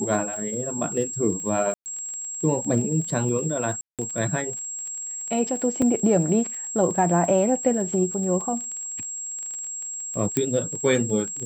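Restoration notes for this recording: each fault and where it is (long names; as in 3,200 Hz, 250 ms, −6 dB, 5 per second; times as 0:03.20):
surface crackle 24 per second −31 dBFS
whistle 7,600 Hz −30 dBFS
0:01.74–0:01.86: drop-out 119 ms
0:03.81–0:03.99: drop-out 177 ms
0:05.82: drop-out 3.4 ms
0:10.37: click −7 dBFS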